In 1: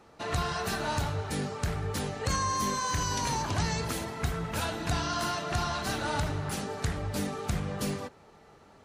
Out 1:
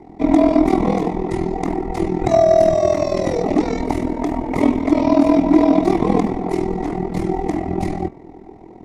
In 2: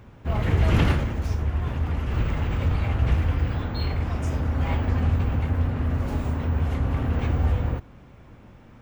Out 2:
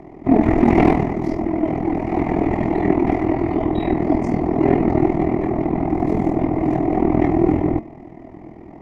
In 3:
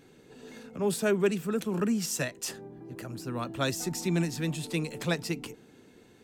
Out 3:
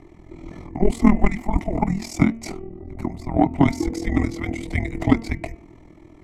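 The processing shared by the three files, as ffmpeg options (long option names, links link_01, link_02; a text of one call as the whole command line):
ffmpeg -i in.wav -filter_complex "[0:a]tremolo=f=41:d=0.788,asplit=3[link_01][link_02][link_03];[link_01]bandpass=frequency=730:width_type=q:width=8,volume=0dB[link_04];[link_02]bandpass=frequency=1090:width_type=q:width=8,volume=-6dB[link_05];[link_03]bandpass=frequency=2440:width_type=q:width=8,volume=-9dB[link_06];[link_04][link_05][link_06]amix=inputs=3:normalize=0,equalizer=frequency=3400:width_type=o:width=1.2:gain=-12,afreqshift=-410,bandreject=frequency=227.3:width_type=h:width=4,bandreject=frequency=454.6:width_type=h:width=4,bandreject=frequency=681.9:width_type=h:width=4,bandreject=frequency=909.2:width_type=h:width=4,bandreject=frequency=1136.5:width_type=h:width=4,bandreject=frequency=1363.8:width_type=h:width=4,bandreject=frequency=1591.1:width_type=h:width=4,bandreject=frequency=1818.4:width_type=h:width=4,bandreject=frequency=2045.7:width_type=h:width=4,bandreject=frequency=2273:width_type=h:width=4,bandreject=frequency=2500.3:width_type=h:width=4,bandreject=frequency=2727.6:width_type=h:width=4,bandreject=frequency=2954.9:width_type=h:width=4,aeval=exprs='0.0335*(cos(1*acos(clip(val(0)/0.0335,-1,1)))-cos(1*PI/2))+0.00376*(cos(3*acos(clip(val(0)/0.0335,-1,1)))-cos(3*PI/2))':channel_layout=same,alimiter=level_in=35.5dB:limit=-1dB:release=50:level=0:latency=1,volume=-1dB" out.wav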